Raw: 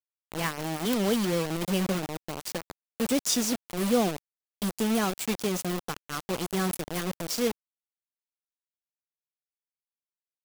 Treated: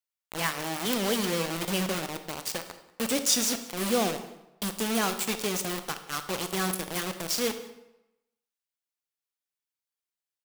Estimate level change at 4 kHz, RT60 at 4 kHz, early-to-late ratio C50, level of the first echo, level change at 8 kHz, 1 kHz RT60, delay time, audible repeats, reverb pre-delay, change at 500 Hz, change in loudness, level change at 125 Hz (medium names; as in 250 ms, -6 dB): +3.5 dB, 0.70 s, 10.5 dB, -22.0 dB, +3.5 dB, 0.90 s, 188 ms, 1, 25 ms, -1.5 dB, 0.0 dB, -4.0 dB